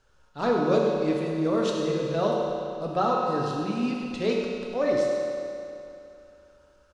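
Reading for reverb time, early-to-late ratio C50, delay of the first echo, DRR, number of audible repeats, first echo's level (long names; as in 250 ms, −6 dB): 2.7 s, −0.5 dB, 102 ms, −2.5 dB, 1, −9.5 dB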